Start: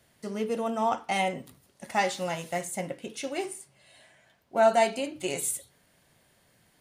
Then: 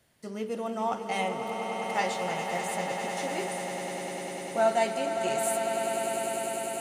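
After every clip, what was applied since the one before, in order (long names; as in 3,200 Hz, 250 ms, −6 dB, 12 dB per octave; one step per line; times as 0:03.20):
echo that builds up and dies away 100 ms, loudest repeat 8, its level −10 dB
level −3.5 dB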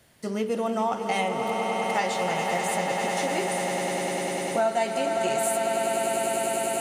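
downward compressor 3 to 1, threshold −32 dBFS, peak gain reduction 10 dB
level +8.5 dB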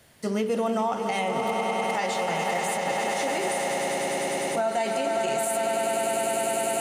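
brickwall limiter −20.5 dBFS, peak gain reduction 7.5 dB
mains-hum notches 60/120/180/240/300/360 Hz
level +3 dB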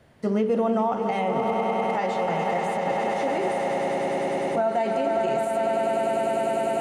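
low-pass filter 1,000 Hz 6 dB per octave
level +4 dB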